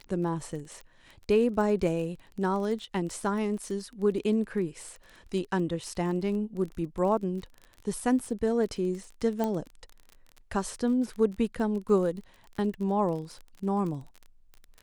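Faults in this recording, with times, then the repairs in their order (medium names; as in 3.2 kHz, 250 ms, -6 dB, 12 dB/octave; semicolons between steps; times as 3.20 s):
crackle 28 per s -36 dBFS
9.44 s: pop -17 dBFS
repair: de-click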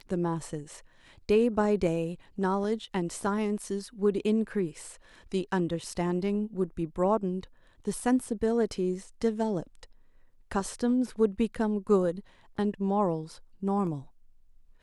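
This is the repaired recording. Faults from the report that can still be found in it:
nothing left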